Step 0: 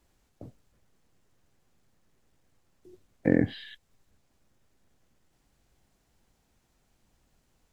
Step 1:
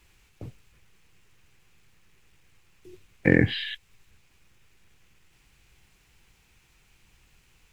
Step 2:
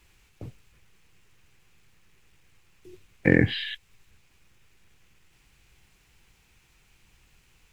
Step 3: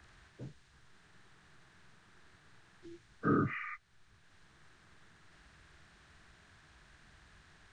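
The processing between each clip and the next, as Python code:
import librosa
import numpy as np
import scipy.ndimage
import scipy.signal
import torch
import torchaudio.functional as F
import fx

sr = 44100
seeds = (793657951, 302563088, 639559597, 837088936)

y1 = fx.graphic_eq_15(x, sr, hz=(250, 630, 2500), db=(-9, -10, 10))
y1 = F.gain(torch.from_numpy(y1), 8.5).numpy()
y2 = y1
y3 = fx.partial_stretch(y2, sr, pct=82)
y3 = fx.band_squash(y3, sr, depth_pct=40)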